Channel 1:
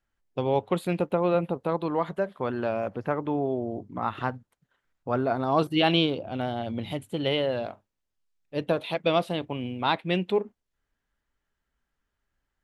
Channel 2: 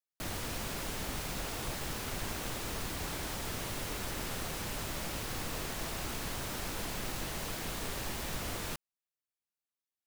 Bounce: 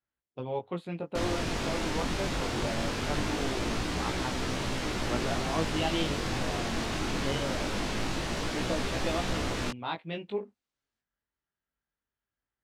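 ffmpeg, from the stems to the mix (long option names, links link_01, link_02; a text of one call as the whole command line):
ffmpeg -i stem1.wav -i stem2.wav -filter_complex "[0:a]highpass=59,volume=-6.5dB[link_01];[1:a]acontrast=84,equalizer=frequency=280:width=1.5:gain=5,adelay=950,volume=2dB[link_02];[link_01][link_02]amix=inputs=2:normalize=0,lowpass=5900,flanger=delay=15.5:depth=7.1:speed=0.22" out.wav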